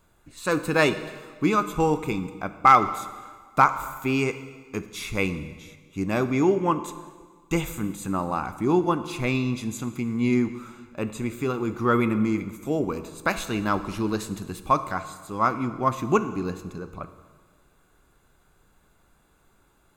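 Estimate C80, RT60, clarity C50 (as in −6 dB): 14.0 dB, 1.6 s, 12.5 dB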